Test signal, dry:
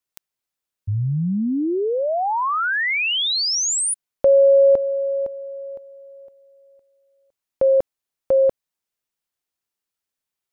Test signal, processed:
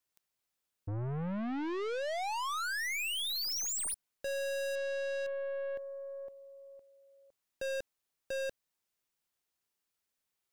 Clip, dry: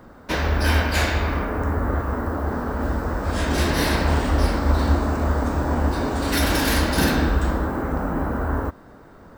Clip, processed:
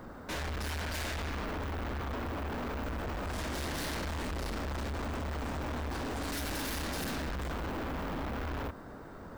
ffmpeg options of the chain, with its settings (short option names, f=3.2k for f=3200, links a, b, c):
-af "aeval=exprs='(tanh(56.2*val(0)+0.2)-tanh(0.2))/56.2':c=same"